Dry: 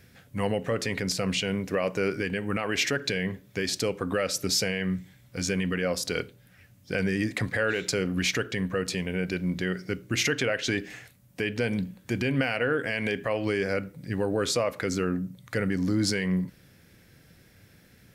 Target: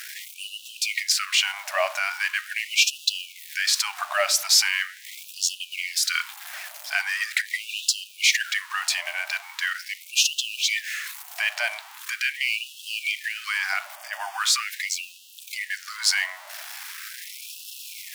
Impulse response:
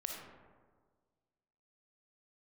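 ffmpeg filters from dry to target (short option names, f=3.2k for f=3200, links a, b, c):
-filter_complex "[0:a]aeval=exprs='val(0)+0.5*0.0133*sgn(val(0))':c=same,asettb=1/sr,asplit=3[a][b][c];[a]atrim=end=13.964[d];[b]atrim=start=13.96:end=14.4,asetpts=PTS-STARTPTS,afade=t=in:d=0.004:c=qsin,afade=t=out:st=0.436:d=0.004:c=qsin,asuperstop=centerf=4000:order=4:qfactor=6.2[e];[c]atrim=start=14.396[f];[d][e]acrossfade=d=0.004:c1=hsin:c2=qsin[g];[g][f]acrossfade=d=0.004:c1=qsin:c2=hsin,equalizer=f=180:w=2:g=-13,afftfilt=real='re*gte(b*sr/1024,560*pow(2600/560,0.5+0.5*sin(2*PI*0.41*pts/sr)))':imag='im*gte(b*sr/1024,560*pow(2600/560,0.5+0.5*sin(2*PI*0.41*pts/sr)))':win_size=1024:overlap=0.75,volume=8dB"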